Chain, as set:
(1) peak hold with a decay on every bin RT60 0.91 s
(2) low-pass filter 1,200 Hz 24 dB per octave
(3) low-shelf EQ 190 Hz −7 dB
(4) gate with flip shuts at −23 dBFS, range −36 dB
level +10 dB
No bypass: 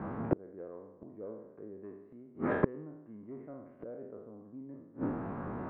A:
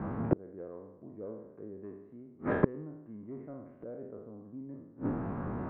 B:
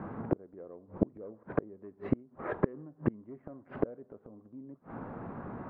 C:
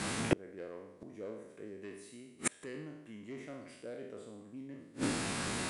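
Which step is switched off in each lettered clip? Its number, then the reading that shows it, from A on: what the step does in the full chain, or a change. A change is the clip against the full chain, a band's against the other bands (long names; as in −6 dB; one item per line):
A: 3, 125 Hz band +3.5 dB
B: 1, 2 kHz band −3.5 dB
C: 2, 2 kHz band +6.5 dB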